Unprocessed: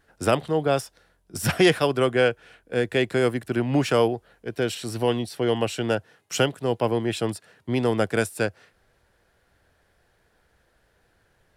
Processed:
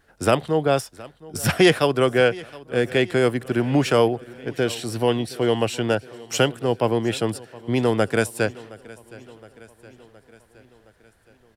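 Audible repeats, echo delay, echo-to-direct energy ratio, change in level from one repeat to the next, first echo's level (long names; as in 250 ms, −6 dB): 4, 717 ms, −19.0 dB, −4.5 dB, −21.0 dB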